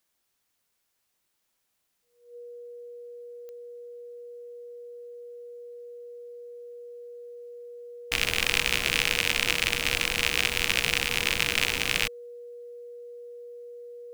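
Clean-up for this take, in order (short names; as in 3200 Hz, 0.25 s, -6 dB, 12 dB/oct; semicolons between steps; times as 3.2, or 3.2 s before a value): de-click; notch 480 Hz, Q 30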